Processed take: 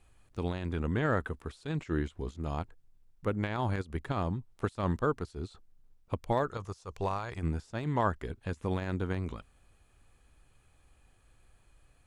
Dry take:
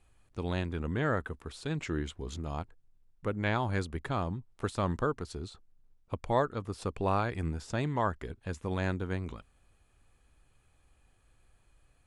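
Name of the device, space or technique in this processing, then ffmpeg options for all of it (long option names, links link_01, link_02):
de-esser from a sidechain: -filter_complex "[0:a]asettb=1/sr,asplit=3[link_01][link_02][link_03];[link_01]atrim=end=6.494[link_04];[link_02]atrim=start=6.49:end=7.38,asetpts=PTS-STARTPTS,afade=type=in:duration=0.004:curve=qsin,afade=type=out:start_time=0.886:duration=0.004:curve=qsin,equalizer=frequency=250:width_type=o:width=0.67:gain=-12,equalizer=frequency=1000:width_type=o:width=0.67:gain=4,equalizer=frequency=6300:width_type=o:width=0.67:gain=12[link_05];[link_03]atrim=start=7.376[link_06];[link_04][link_05]acrossfade=duration=0.004:curve1=hsin:curve2=qsin[link_07];[link_07][link_06]acrossfade=duration=0.004:curve1=qsin:curve2=hsin,asplit=2[link_08][link_09];[link_09]highpass=frequency=5200:width=0.5412,highpass=frequency=5200:width=1.3066,apad=whole_len=532077[link_10];[link_08][link_10]sidechaincompress=threshold=-59dB:ratio=16:attack=1:release=58,volume=2.5dB"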